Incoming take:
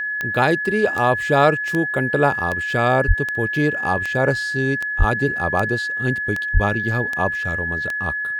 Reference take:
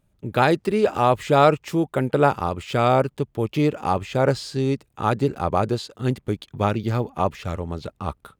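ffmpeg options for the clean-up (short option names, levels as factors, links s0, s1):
-filter_complex "[0:a]adeclick=t=4,bandreject=f=1700:w=30,asplit=3[s0][s1][s2];[s0]afade=t=out:st=3.07:d=0.02[s3];[s1]highpass=f=140:w=0.5412,highpass=f=140:w=1.3066,afade=t=in:st=3.07:d=0.02,afade=t=out:st=3.19:d=0.02[s4];[s2]afade=t=in:st=3.19:d=0.02[s5];[s3][s4][s5]amix=inputs=3:normalize=0,asplit=3[s6][s7][s8];[s6]afade=t=out:st=4.98:d=0.02[s9];[s7]highpass=f=140:w=0.5412,highpass=f=140:w=1.3066,afade=t=in:st=4.98:d=0.02,afade=t=out:st=5.1:d=0.02[s10];[s8]afade=t=in:st=5.1:d=0.02[s11];[s9][s10][s11]amix=inputs=3:normalize=0,asplit=3[s12][s13][s14];[s12]afade=t=out:st=6.53:d=0.02[s15];[s13]highpass=f=140:w=0.5412,highpass=f=140:w=1.3066,afade=t=in:st=6.53:d=0.02,afade=t=out:st=6.65:d=0.02[s16];[s14]afade=t=in:st=6.65:d=0.02[s17];[s15][s16][s17]amix=inputs=3:normalize=0"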